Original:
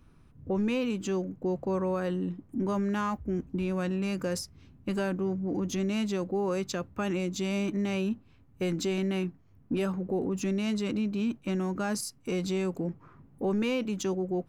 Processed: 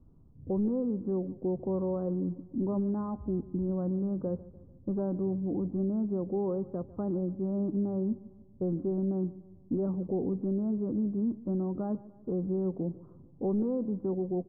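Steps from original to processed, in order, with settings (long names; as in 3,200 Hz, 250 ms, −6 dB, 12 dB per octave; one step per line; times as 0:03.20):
Bessel low-pass filter 580 Hz, order 8
repeating echo 147 ms, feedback 49%, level −19 dB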